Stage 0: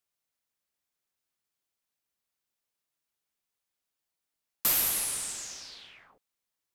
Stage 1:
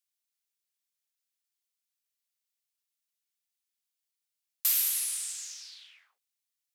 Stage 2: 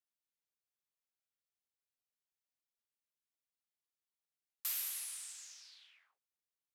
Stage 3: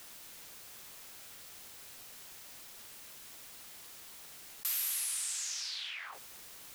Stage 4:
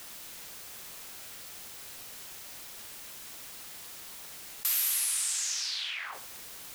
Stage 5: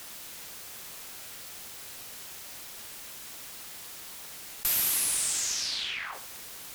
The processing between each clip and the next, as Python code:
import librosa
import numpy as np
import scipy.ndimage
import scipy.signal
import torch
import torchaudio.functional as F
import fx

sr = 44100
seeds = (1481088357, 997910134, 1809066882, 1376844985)

y1 = scipy.signal.sosfilt(scipy.signal.bessel(2, 2900.0, 'highpass', norm='mag', fs=sr, output='sos'), x)
y2 = fx.high_shelf(y1, sr, hz=2100.0, db=-9.0)
y2 = y2 * 10.0 ** (-3.5 / 20.0)
y3 = fx.env_flatten(y2, sr, amount_pct=70)
y3 = y3 * 10.0 ** (3.0 / 20.0)
y4 = fx.room_flutter(y3, sr, wall_m=11.0, rt60_s=0.33)
y4 = y4 * 10.0 ** (5.5 / 20.0)
y5 = fx.tube_stage(y4, sr, drive_db=21.0, bias=0.55)
y5 = y5 * 10.0 ** (4.5 / 20.0)